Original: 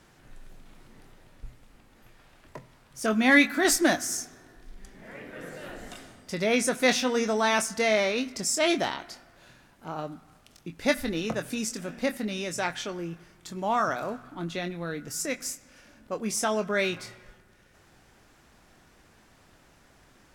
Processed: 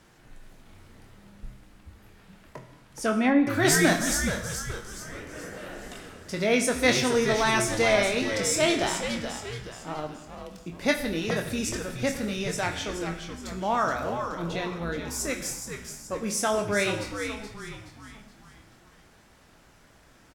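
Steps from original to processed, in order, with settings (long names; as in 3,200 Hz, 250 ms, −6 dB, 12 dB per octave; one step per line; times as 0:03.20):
echo with shifted repeats 424 ms, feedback 45%, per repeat −110 Hz, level −7.5 dB
0:02.57–0:03.47: treble cut that deepens with the level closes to 600 Hz, closed at −15 dBFS
reverb whose tail is shaped and stops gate 290 ms falling, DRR 6.5 dB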